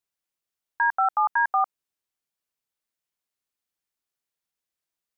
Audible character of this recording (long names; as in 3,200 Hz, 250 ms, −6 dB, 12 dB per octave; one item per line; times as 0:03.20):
background noise floor −88 dBFS
spectral slope +8.0 dB per octave